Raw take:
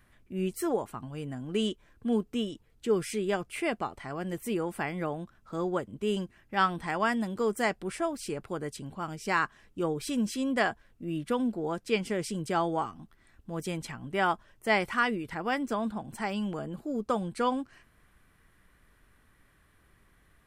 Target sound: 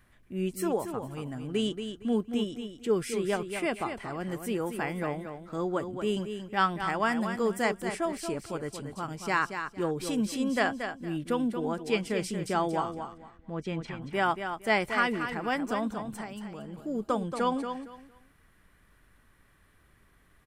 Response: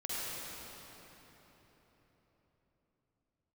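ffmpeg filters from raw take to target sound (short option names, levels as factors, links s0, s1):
-filter_complex "[0:a]asettb=1/sr,asplit=3[s0][s1][s2];[s0]atrim=end=12.924[s3];[s1]atrim=start=12.92:end=14.02,asetpts=PTS-STARTPTS,afade=t=in:d=0.004:c=qsin,afade=t=out:st=1.096:d=0.004:c=qsin,lowpass=3400[s4];[s2]atrim=start=14.016[s5];[s3][s4]acrossfade=d=0.004:c1=hsin:c2=qsin[s6];[s6][s5]acrossfade=d=0.004:c1=qsin:c2=hsin,asettb=1/sr,asplit=3[s7][s8][s9];[s7]atrim=end=16.154[s10];[s8]atrim=start=16.15:end=16.78,asetpts=PTS-STARTPTS,afade=t=in:d=0.004:c=qsin,afade=t=out:st=0.626:d=0.004:c=qsin,acompressor=threshold=0.0126:ratio=6[s11];[s9]atrim=start=16.776[s12];[s10][s11]acrossfade=d=0.004:c1=hsin:c2=qsin[s13];[s13][s12]acrossfade=d=0.004:c1=qsin:c2=hsin,aecho=1:1:230|460|690:0.398|0.0916|0.0211"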